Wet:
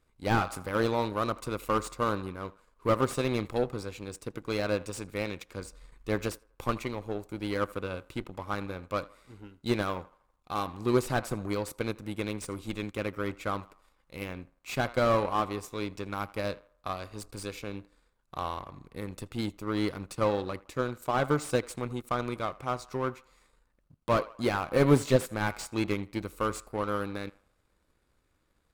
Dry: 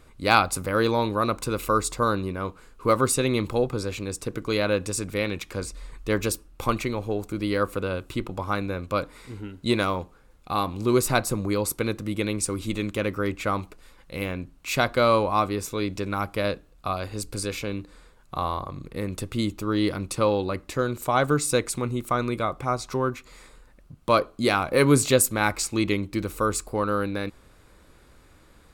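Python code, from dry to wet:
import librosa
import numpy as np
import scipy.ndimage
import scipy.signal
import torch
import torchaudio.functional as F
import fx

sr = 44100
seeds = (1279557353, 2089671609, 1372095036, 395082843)

y = fx.echo_banded(x, sr, ms=81, feedback_pct=58, hz=950.0, wet_db=-14)
y = fx.power_curve(y, sr, exponent=1.4)
y = fx.slew_limit(y, sr, full_power_hz=89.0)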